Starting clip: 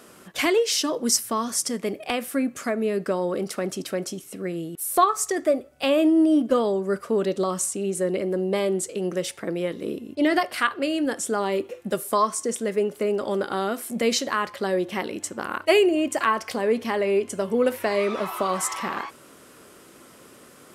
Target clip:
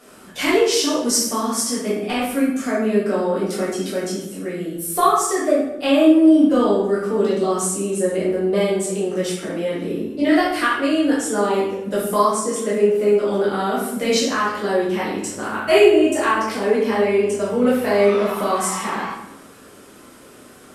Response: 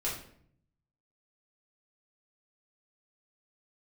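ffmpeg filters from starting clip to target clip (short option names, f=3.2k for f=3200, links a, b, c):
-filter_complex "[1:a]atrim=start_sample=2205,asetrate=27342,aresample=44100[a];[0:a][a]afir=irnorm=-1:irlink=0,volume=-3.5dB"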